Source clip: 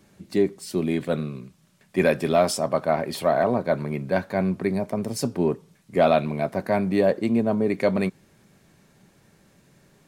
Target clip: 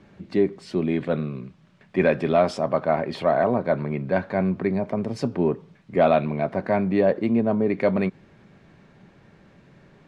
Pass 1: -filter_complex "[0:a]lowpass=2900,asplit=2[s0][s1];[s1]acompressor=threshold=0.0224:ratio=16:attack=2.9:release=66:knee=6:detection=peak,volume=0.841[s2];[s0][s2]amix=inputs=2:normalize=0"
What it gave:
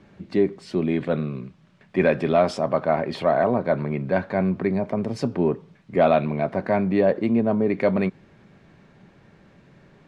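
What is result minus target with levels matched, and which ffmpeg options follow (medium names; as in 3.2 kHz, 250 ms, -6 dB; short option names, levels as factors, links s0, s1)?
compression: peak gain reduction -5.5 dB
-filter_complex "[0:a]lowpass=2900,asplit=2[s0][s1];[s1]acompressor=threshold=0.0112:ratio=16:attack=2.9:release=66:knee=6:detection=peak,volume=0.841[s2];[s0][s2]amix=inputs=2:normalize=0"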